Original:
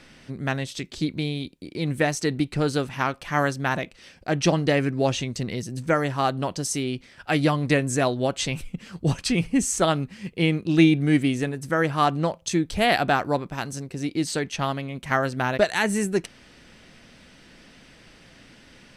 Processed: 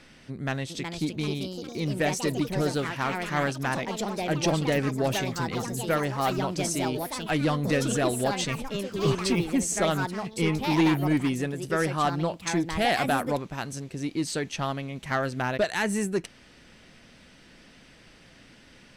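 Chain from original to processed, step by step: saturation -13.5 dBFS, distortion -16 dB; ever faster or slower copies 468 ms, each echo +4 st, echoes 3, each echo -6 dB; trim -2.5 dB

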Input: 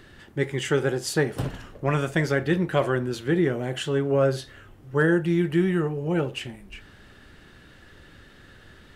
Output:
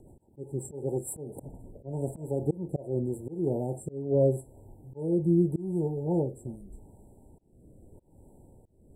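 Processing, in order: brick-wall FIR band-stop 970–7400 Hz; slow attack 280 ms; rotary cabinet horn 7.5 Hz, later 0.85 Hz, at 0.67 s

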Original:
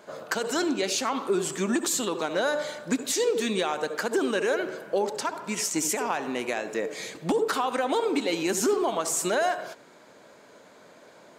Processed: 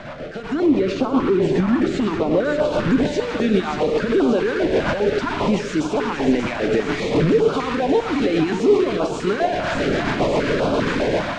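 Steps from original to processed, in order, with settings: one-bit delta coder 64 kbps, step -26.5 dBFS; 0.49–2.65 s: treble shelf 2.8 kHz -9.5 dB; peak limiter -25 dBFS, peak gain reduction 10 dB; level rider gain up to 14.5 dB; bit crusher 6-bit; rotary cabinet horn 7.5 Hz; tape spacing loss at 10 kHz 36 dB; thinning echo 583 ms, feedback 80%, high-pass 660 Hz, level -7 dB; reverberation RT60 1.4 s, pre-delay 7 ms, DRR 13.5 dB; step-sequenced notch 5 Hz 420–1900 Hz; trim +5.5 dB

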